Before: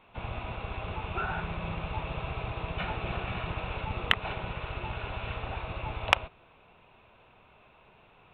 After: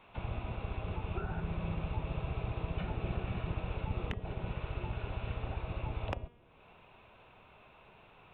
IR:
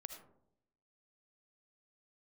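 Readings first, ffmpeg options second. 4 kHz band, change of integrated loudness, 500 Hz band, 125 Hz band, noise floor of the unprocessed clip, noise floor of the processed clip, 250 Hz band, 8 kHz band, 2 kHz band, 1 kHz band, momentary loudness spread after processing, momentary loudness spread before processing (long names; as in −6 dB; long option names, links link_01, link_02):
−15.5 dB, −5.0 dB, −4.0 dB, 0.0 dB, −59 dBFS, −60 dBFS, −0.5 dB, below −20 dB, −13.5 dB, −9.5 dB, 21 LU, 9 LU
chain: -filter_complex "[0:a]bandreject=frequency=238.5:width_type=h:width=4,bandreject=frequency=477:width_type=h:width=4,bandreject=frequency=715.5:width_type=h:width=4,bandreject=frequency=954:width_type=h:width=4,bandreject=frequency=1192.5:width_type=h:width=4,bandreject=frequency=1431:width_type=h:width=4,bandreject=frequency=1669.5:width_type=h:width=4,bandreject=frequency=1908:width_type=h:width=4,bandreject=frequency=2146.5:width_type=h:width=4,bandreject=frequency=2385:width_type=h:width=4,bandreject=frequency=2623.5:width_type=h:width=4,bandreject=frequency=2862:width_type=h:width=4,bandreject=frequency=3100.5:width_type=h:width=4,bandreject=frequency=3339:width_type=h:width=4,bandreject=frequency=3577.5:width_type=h:width=4,acrossover=split=510[link_01][link_02];[link_02]acompressor=threshold=-48dB:ratio=4[link_03];[link_01][link_03]amix=inputs=2:normalize=0"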